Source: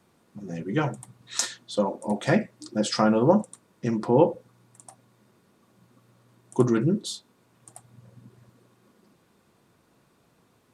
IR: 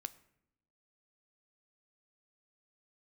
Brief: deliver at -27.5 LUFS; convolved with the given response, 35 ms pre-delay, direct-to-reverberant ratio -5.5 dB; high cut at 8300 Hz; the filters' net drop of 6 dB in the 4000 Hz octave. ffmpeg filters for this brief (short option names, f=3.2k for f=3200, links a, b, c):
-filter_complex "[0:a]lowpass=8.3k,equalizer=f=4k:t=o:g=-7.5,asplit=2[a][b];[1:a]atrim=start_sample=2205,adelay=35[c];[b][c]afir=irnorm=-1:irlink=0,volume=9dB[d];[a][d]amix=inputs=2:normalize=0,volume=-8dB"